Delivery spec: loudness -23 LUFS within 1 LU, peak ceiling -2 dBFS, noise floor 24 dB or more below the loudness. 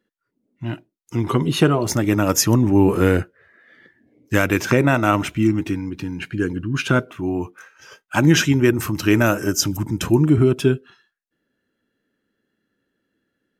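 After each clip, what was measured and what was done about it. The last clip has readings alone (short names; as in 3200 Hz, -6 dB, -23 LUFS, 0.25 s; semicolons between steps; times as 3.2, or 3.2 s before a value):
loudness -19.0 LUFS; peak -3.0 dBFS; loudness target -23.0 LUFS
-> gain -4 dB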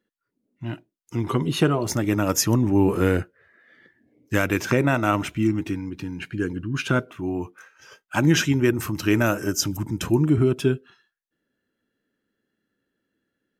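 loudness -23.0 LUFS; peak -7.0 dBFS; noise floor -81 dBFS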